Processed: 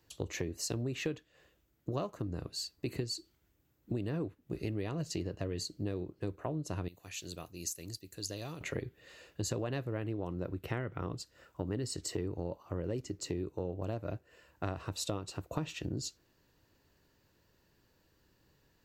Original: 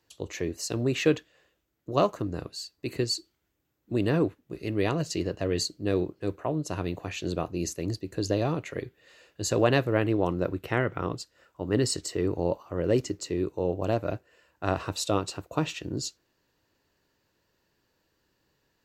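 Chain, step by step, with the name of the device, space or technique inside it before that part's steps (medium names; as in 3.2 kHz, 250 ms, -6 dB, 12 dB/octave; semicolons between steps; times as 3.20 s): 6.88–8.61 s: pre-emphasis filter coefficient 0.9; ASMR close-microphone chain (bass shelf 210 Hz +8 dB; compression 8:1, threshold -33 dBFS, peak gain reduction 18 dB; treble shelf 12 kHz +5 dB)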